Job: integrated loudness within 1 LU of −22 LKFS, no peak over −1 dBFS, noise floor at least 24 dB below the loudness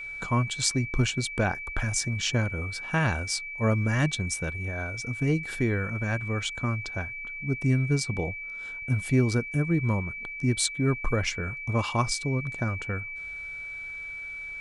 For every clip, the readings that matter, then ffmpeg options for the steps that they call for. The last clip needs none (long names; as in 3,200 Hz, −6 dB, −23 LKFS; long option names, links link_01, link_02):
interfering tone 2,300 Hz; level of the tone −35 dBFS; integrated loudness −28.0 LKFS; sample peak −6.5 dBFS; target loudness −22.0 LKFS
→ -af "bandreject=frequency=2300:width=30"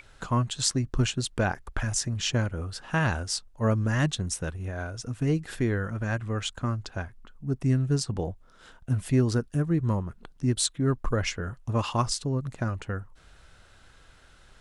interfering tone none found; integrated loudness −28.5 LKFS; sample peak −6.5 dBFS; target loudness −22.0 LKFS
→ -af "volume=6.5dB,alimiter=limit=-1dB:level=0:latency=1"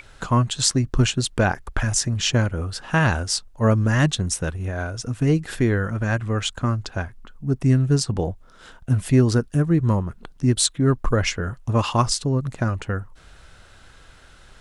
integrated loudness −22.0 LKFS; sample peak −1.0 dBFS; background noise floor −49 dBFS